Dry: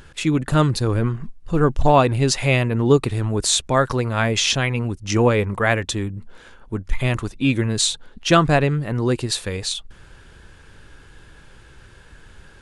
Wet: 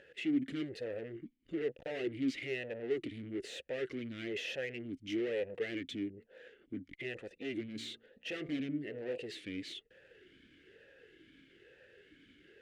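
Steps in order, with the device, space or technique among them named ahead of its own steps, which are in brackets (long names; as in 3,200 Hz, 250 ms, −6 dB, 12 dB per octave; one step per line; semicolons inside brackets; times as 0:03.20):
talk box (tube saturation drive 27 dB, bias 0.35; formant filter swept between two vowels e-i 1.1 Hz)
0:07.64–0:09.18: hum removal 56.68 Hz, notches 22
level +3 dB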